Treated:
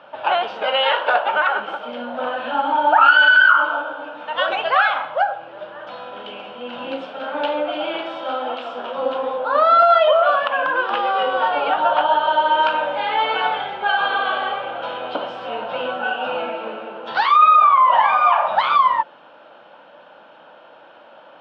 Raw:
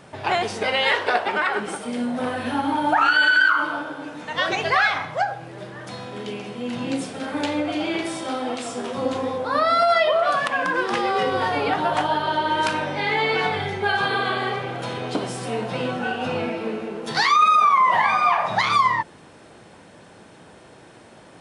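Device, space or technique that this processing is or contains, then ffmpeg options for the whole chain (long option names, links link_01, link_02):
phone earpiece: -af "highpass=380,equalizer=frequency=400:width_type=q:width=4:gain=-9,equalizer=frequency=570:width_type=q:width=4:gain=9,equalizer=frequency=890:width_type=q:width=4:gain=6,equalizer=frequency=1400:width_type=q:width=4:gain=8,equalizer=frequency=2000:width_type=q:width=4:gain=-9,equalizer=frequency=3000:width_type=q:width=4:gain=7,lowpass=frequency=3300:width=0.5412,lowpass=frequency=3300:width=1.3066"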